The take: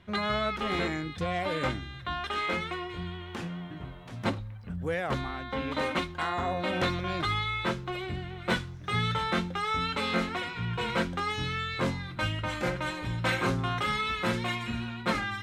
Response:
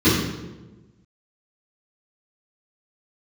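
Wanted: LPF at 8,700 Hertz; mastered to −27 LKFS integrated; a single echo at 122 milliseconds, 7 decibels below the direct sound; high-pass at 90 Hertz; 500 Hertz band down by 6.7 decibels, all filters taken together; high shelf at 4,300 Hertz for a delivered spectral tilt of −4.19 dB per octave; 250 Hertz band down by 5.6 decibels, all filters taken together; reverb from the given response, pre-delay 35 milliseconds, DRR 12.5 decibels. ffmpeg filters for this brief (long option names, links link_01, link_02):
-filter_complex "[0:a]highpass=90,lowpass=8700,equalizer=frequency=250:width_type=o:gain=-6,equalizer=frequency=500:width_type=o:gain=-7,highshelf=frequency=4300:gain=8,aecho=1:1:122:0.447,asplit=2[link_01][link_02];[1:a]atrim=start_sample=2205,adelay=35[link_03];[link_02][link_03]afir=irnorm=-1:irlink=0,volume=-34dB[link_04];[link_01][link_04]amix=inputs=2:normalize=0,volume=3.5dB"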